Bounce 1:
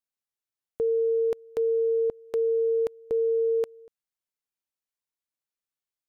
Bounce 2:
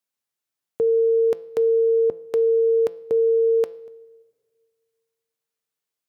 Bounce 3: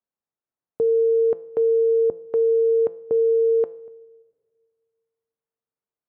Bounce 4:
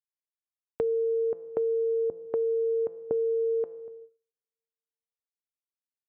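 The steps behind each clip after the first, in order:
high-pass 92 Hz; de-hum 169.4 Hz, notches 33; reverberation RT60 1.7 s, pre-delay 6 ms, DRR 19.5 dB; trim +6 dB
low-pass 1.1 kHz 12 dB/octave
gate -47 dBFS, range -30 dB; compression, threshold -25 dBFS, peak gain reduction 8 dB; distance through air 290 m

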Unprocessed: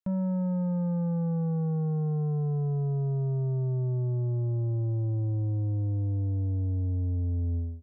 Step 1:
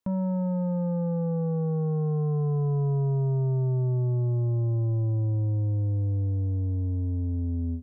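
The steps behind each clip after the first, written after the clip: graphic EQ with 31 bands 100 Hz +6 dB, 250 Hz +10 dB, 500 Hz +7 dB, 1 kHz +9 dB; peak limiter -29 dBFS, peak gain reduction 10 dB; trim +6 dB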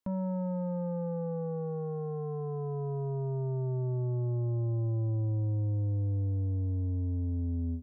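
peaking EQ 150 Hz -9 dB 0.41 oct; trim -3 dB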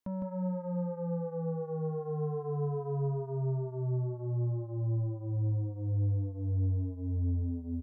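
peak limiter -30 dBFS, peak gain reduction 4 dB; delay 158 ms -3.5 dB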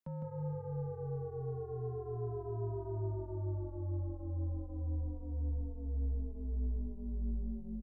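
frequency shift -34 Hz; frequency-shifting echo 159 ms, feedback 35%, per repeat -51 Hz, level -12 dB; trim -5.5 dB

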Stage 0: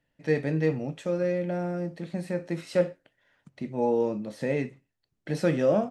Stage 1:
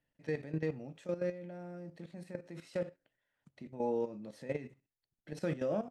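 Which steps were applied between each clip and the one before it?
level held to a coarse grid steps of 13 dB; trim -6.5 dB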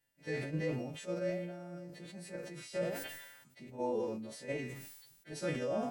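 partials quantised in pitch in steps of 2 st; flange 1.3 Hz, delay 2.2 ms, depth 6.9 ms, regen +80%; decay stretcher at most 46 dB/s; trim +3.5 dB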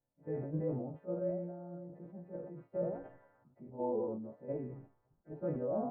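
low-pass 1 kHz 24 dB/octave

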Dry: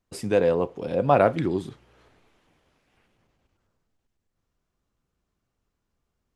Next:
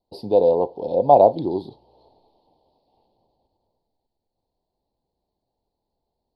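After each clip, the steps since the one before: FFT filter 160 Hz 0 dB, 900 Hz +14 dB, 1.4 kHz -30 dB, 2.2 kHz -23 dB, 4.4 kHz +12 dB, 6.9 kHz -29 dB, 11 kHz -6 dB; trim -4.5 dB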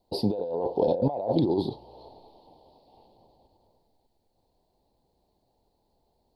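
peak limiter -9 dBFS, peak gain reduction 7.5 dB; compressor with a negative ratio -28 dBFS, ratio -1; trim +1.5 dB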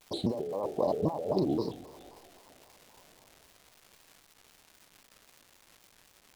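crackle 520 per s -40 dBFS; tape echo 109 ms, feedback 62%, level -15.5 dB; vibrato with a chosen wave square 3.8 Hz, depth 250 cents; trim -4.5 dB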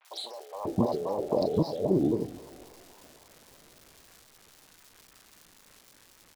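three bands offset in time mids, highs, lows 40/540 ms, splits 700/2600 Hz; trim +4.5 dB

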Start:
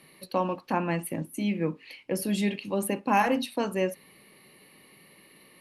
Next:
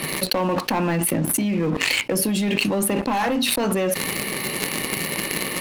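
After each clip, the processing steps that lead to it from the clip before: waveshaping leveller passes 3; level flattener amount 100%; trim -7 dB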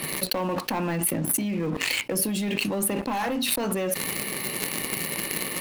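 treble shelf 12 kHz +9 dB; trim -5.5 dB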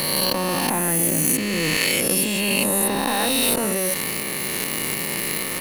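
reverse spectral sustain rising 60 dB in 2.41 s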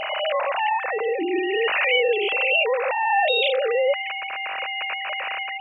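formants replaced by sine waves; whistle 780 Hz -32 dBFS; trim -1 dB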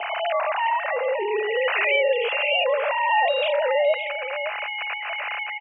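delay 566 ms -10.5 dB; mistuned SSB +61 Hz 310–2700 Hz

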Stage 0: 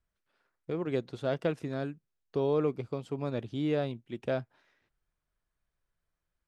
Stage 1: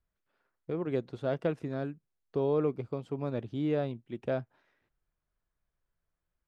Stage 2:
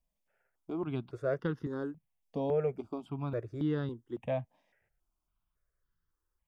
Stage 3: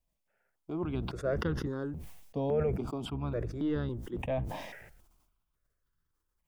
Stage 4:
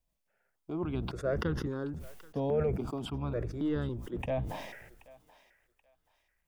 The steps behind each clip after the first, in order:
treble shelf 2.7 kHz -9 dB
band-stop 4.1 kHz, Q 5.9; stepped phaser 3.6 Hz 380–2400 Hz; trim +2 dB
octave divider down 1 oct, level -5 dB; decay stretcher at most 46 dB/s
thinning echo 780 ms, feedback 32%, high-pass 820 Hz, level -18 dB

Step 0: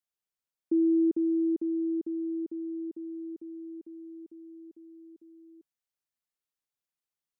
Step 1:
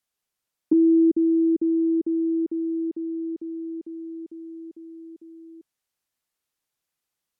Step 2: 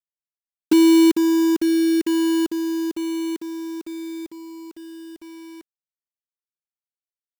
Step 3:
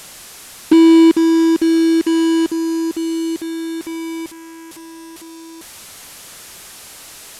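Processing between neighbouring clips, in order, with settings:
low-pass that closes with the level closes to 360 Hz, closed at -26.5 dBFS; trim +9 dB
companded quantiser 4-bit; trim +3 dB
one-bit delta coder 64 kbps, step -35 dBFS; trim +5 dB

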